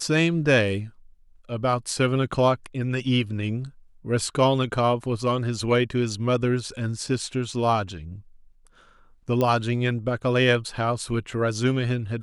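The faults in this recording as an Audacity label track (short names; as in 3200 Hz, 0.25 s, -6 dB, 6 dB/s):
9.410000	9.410000	pop -12 dBFS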